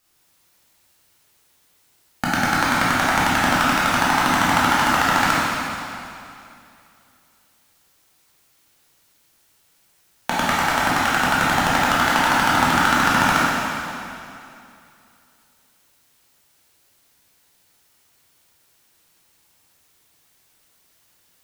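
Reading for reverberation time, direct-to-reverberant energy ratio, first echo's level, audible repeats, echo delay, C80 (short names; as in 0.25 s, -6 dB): 2.6 s, -8.0 dB, none, none, none, -2.0 dB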